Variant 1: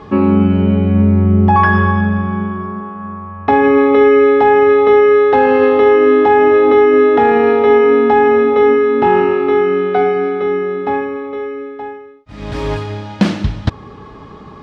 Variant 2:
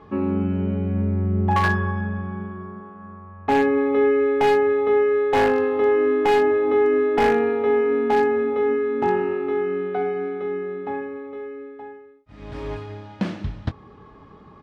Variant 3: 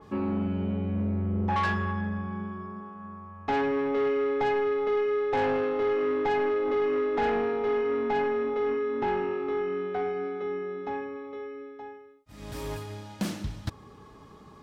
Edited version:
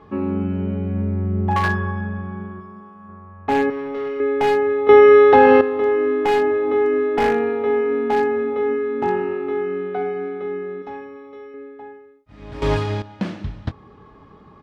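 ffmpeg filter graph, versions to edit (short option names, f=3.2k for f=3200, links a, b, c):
-filter_complex "[2:a]asplit=3[a][b][c];[0:a]asplit=2[d][e];[1:a]asplit=6[f][g][h][i][j][k];[f]atrim=end=2.602[l];[a]atrim=start=2.598:end=3.092[m];[g]atrim=start=3.088:end=3.702[n];[b]atrim=start=3.698:end=4.202[o];[h]atrim=start=4.198:end=4.892[p];[d]atrim=start=4.888:end=5.612[q];[i]atrim=start=5.608:end=10.822[r];[c]atrim=start=10.818:end=11.542[s];[j]atrim=start=11.538:end=12.622[t];[e]atrim=start=12.618:end=13.022[u];[k]atrim=start=13.018[v];[l][m]acrossfade=d=0.004:c1=hsin:c2=hsin[w];[w][n]acrossfade=d=0.004:c1=hsin:c2=hsin[x];[x][o]acrossfade=d=0.004:c1=hsin:c2=hsin[y];[y][p]acrossfade=d=0.004:c1=hsin:c2=hsin[z];[z][q]acrossfade=d=0.004:c1=hsin:c2=hsin[aa];[aa][r]acrossfade=d=0.004:c1=hsin:c2=hsin[ab];[ab][s]acrossfade=d=0.004:c1=hsin:c2=hsin[ac];[ac][t]acrossfade=d=0.004:c1=hsin:c2=hsin[ad];[ad][u]acrossfade=d=0.004:c1=hsin:c2=hsin[ae];[ae][v]acrossfade=d=0.004:c1=hsin:c2=hsin"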